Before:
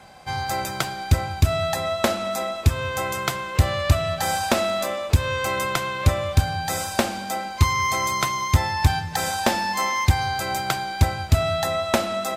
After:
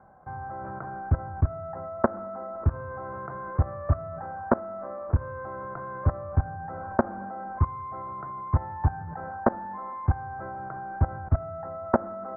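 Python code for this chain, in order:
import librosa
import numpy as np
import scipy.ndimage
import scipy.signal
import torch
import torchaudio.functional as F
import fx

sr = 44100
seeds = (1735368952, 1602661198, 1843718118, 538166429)

y = fx.rattle_buzz(x, sr, strikes_db=-21.0, level_db=-20.0)
y = scipy.signal.sosfilt(scipy.signal.butter(8, 1500.0, 'lowpass', fs=sr, output='sos'), y)
y = fx.level_steps(y, sr, step_db=19)
y = y * librosa.db_to_amplitude(1.5)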